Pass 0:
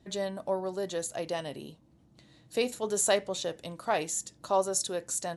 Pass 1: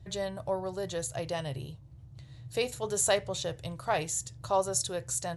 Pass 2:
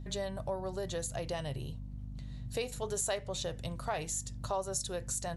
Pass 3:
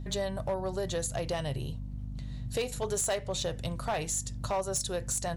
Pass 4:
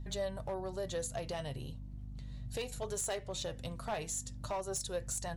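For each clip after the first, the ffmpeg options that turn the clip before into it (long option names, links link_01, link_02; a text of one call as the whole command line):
ffmpeg -i in.wav -af "lowshelf=frequency=160:width_type=q:width=3:gain=12" out.wav
ffmpeg -i in.wav -af "aeval=exprs='val(0)+0.00794*(sin(2*PI*50*n/s)+sin(2*PI*2*50*n/s)/2+sin(2*PI*3*50*n/s)/3+sin(2*PI*4*50*n/s)/4+sin(2*PI*5*50*n/s)/5)':channel_layout=same,acompressor=threshold=-34dB:ratio=2.5" out.wav
ffmpeg -i in.wav -af "asoftclip=type=hard:threshold=-29dB,volume=4.5dB" out.wav
ffmpeg -i in.wav -af "flanger=delay=1:depth=3.8:regen=66:speed=0.38:shape=triangular,volume=-2dB" out.wav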